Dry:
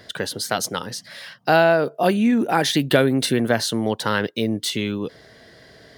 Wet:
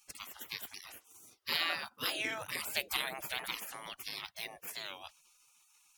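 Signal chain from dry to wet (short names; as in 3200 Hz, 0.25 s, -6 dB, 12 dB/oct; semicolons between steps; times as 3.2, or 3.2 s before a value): spectral gate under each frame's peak -25 dB weak; record warp 45 rpm, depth 160 cents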